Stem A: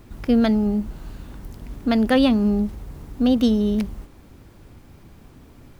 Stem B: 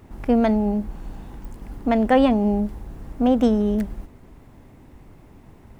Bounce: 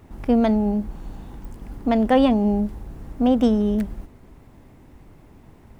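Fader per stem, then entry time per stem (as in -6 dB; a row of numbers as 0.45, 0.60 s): -15.5, -1.0 dB; 0.00, 0.00 s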